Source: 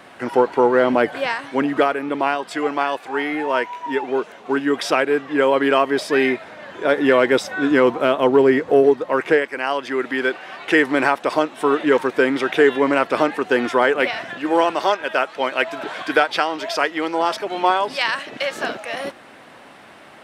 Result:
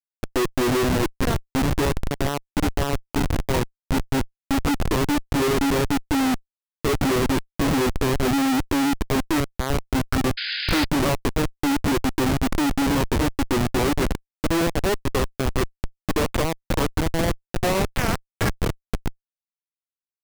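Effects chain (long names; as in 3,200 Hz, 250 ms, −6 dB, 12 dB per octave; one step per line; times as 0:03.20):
formants moved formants −5 semitones
comparator with hysteresis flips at −18 dBFS
sound drawn into the spectrogram noise, 0:10.37–0:10.85, 1,400–5,100 Hz −28 dBFS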